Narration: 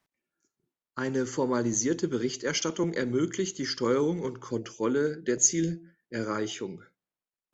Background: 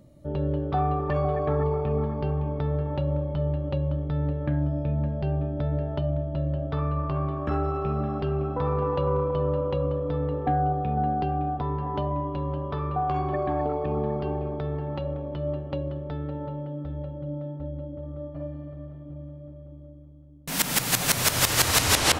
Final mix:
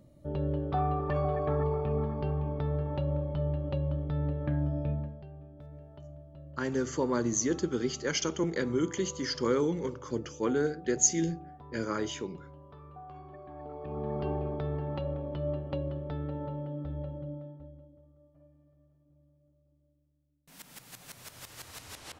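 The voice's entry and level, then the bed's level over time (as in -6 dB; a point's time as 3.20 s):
5.60 s, -2.0 dB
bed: 4.91 s -4.5 dB
5.28 s -21 dB
13.48 s -21 dB
14.23 s -3.5 dB
17.15 s -3.5 dB
18.17 s -25.5 dB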